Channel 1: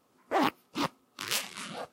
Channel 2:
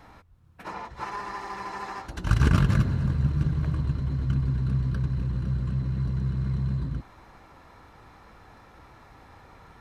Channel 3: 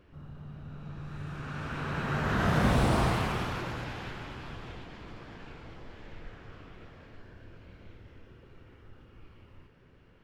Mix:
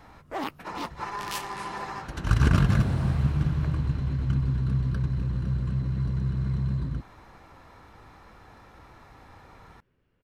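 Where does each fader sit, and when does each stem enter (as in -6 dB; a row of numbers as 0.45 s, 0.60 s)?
-5.5 dB, 0.0 dB, -12.5 dB; 0.00 s, 0.00 s, 0.05 s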